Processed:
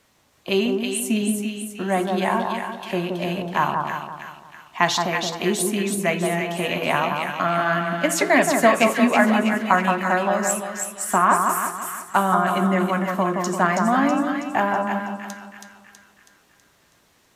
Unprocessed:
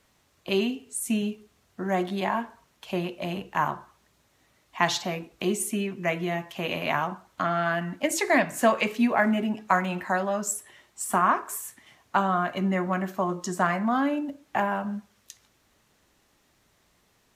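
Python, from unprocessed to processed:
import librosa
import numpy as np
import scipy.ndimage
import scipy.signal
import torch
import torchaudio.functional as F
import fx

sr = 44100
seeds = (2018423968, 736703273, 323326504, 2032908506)

p1 = fx.low_shelf(x, sr, hz=64.0, db=-9.5)
p2 = p1 + fx.echo_split(p1, sr, split_hz=1500.0, low_ms=172, high_ms=324, feedback_pct=52, wet_db=-4.0, dry=0)
y = p2 * 10.0 ** (4.5 / 20.0)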